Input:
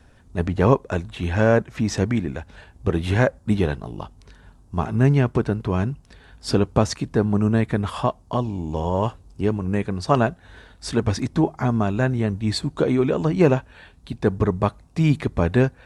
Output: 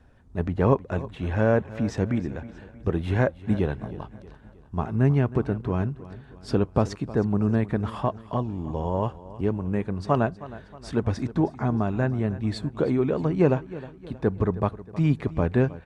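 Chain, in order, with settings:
high-shelf EQ 3,000 Hz −11.5 dB
repeating echo 315 ms, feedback 47%, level −17 dB
level −3.5 dB

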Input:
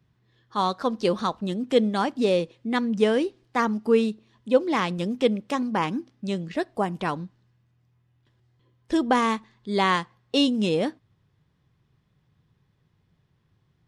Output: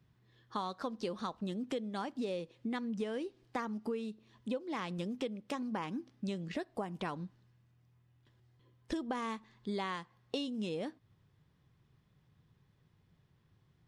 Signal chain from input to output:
downward compressor 10 to 1, threshold −32 dBFS, peak gain reduction 19 dB
level −2.5 dB

